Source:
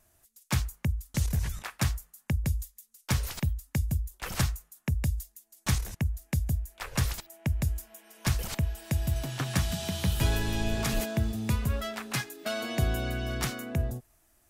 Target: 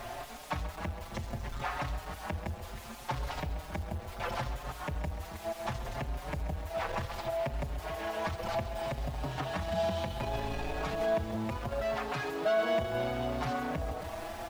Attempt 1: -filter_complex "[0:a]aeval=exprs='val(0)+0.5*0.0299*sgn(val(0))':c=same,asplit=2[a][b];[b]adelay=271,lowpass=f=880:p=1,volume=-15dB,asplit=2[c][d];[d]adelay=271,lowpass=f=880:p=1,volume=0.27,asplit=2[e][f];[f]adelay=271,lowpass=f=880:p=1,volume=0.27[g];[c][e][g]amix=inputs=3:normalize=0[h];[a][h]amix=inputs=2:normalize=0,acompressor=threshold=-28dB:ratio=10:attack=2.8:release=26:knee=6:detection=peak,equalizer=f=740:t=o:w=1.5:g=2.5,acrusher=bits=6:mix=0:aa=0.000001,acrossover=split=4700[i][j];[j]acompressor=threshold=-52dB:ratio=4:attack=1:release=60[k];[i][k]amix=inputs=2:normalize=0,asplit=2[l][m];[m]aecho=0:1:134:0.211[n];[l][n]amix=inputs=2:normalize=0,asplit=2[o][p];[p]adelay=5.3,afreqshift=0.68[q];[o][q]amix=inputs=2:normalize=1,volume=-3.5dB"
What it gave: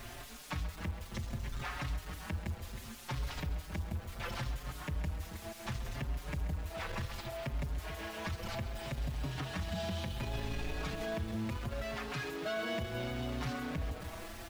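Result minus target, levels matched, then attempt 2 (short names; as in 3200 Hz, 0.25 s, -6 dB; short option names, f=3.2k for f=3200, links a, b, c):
1000 Hz band -4.5 dB
-filter_complex "[0:a]aeval=exprs='val(0)+0.5*0.0299*sgn(val(0))':c=same,asplit=2[a][b];[b]adelay=271,lowpass=f=880:p=1,volume=-15dB,asplit=2[c][d];[d]adelay=271,lowpass=f=880:p=1,volume=0.27,asplit=2[e][f];[f]adelay=271,lowpass=f=880:p=1,volume=0.27[g];[c][e][g]amix=inputs=3:normalize=0[h];[a][h]amix=inputs=2:normalize=0,acompressor=threshold=-28dB:ratio=10:attack=2.8:release=26:knee=6:detection=peak,equalizer=f=740:t=o:w=1.5:g=13.5,acrusher=bits=6:mix=0:aa=0.000001,acrossover=split=4700[i][j];[j]acompressor=threshold=-52dB:ratio=4:attack=1:release=60[k];[i][k]amix=inputs=2:normalize=0,asplit=2[l][m];[m]aecho=0:1:134:0.211[n];[l][n]amix=inputs=2:normalize=0,asplit=2[o][p];[p]adelay=5.3,afreqshift=0.68[q];[o][q]amix=inputs=2:normalize=1,volume=-3.5dB"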